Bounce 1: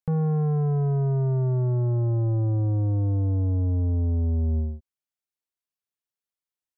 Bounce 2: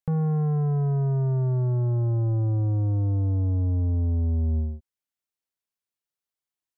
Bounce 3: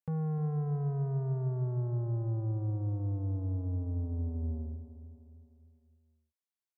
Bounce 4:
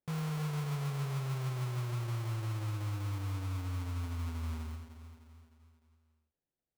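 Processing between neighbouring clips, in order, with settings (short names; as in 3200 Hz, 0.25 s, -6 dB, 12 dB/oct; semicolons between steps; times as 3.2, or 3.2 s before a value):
dynamic EQ 440 Hz, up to -3 dB, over -38 dBFS, Q 1.2
HPF 81 Hz; on a send: feedback echo 0.304 s, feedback 51%, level -12 dB; on the sum: gain -8.5 dB
in parallel at -5 dB: hard clip -33.5 dBFS, distortion -11 dB; on the sum: sample-rate reducer 1200 Hz, jitter 20%; gain -6 dB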